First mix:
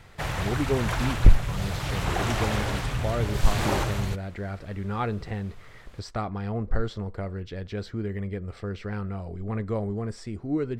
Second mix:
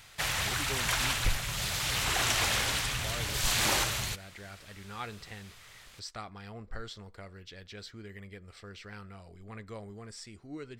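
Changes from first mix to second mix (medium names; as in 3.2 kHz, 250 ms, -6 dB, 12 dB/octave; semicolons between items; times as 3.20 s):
speech -7.0 dB; master: add tilt shelf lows -9.5 dB, about 1.5 kHz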